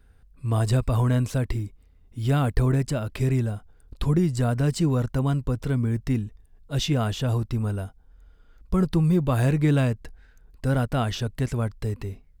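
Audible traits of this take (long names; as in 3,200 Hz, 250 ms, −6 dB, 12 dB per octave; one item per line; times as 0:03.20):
background noise floor −55 dBFS
spectral slope −7.5 dB per octave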